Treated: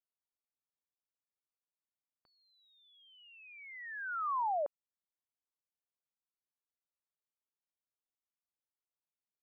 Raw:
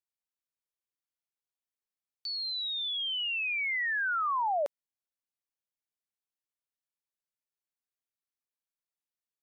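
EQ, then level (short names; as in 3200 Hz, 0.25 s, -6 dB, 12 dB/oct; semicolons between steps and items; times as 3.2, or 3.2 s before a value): ladder low-pass 1500 Hz, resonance 25%; 0.0 dB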